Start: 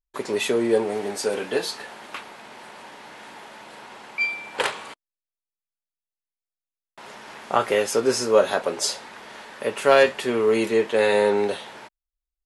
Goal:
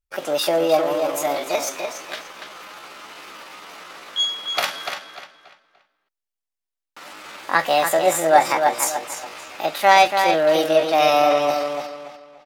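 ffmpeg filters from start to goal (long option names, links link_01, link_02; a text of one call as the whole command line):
ffmpeg -i in.wav -filter_complex "[0:a]asplit=2[link_01][link_02];[link_02]adelay=292,lowpass=frequency=4000:poles=1,volume=-6dB,asplit=2[link_03][link_04];[link_04]adelay=292,lowpass=frequency=4000:poles=1,volume=0.32,asplit=2[link_05][link_06];[link_06]adelay=292,lowpass=frequency=4000:poles=1,volume=0.32,asplit=2[link_07][link_08];[link_08]adelay=292,lowpass=frequency=4000:poles=1,volume=0.32[link_09];[link_01][link_03][link_05][link_07][link_09]amix=inputs=5:normalize=0,asetrate=62367,aresample=44100,atempo=0.707107,volume=2.5dB" out.wav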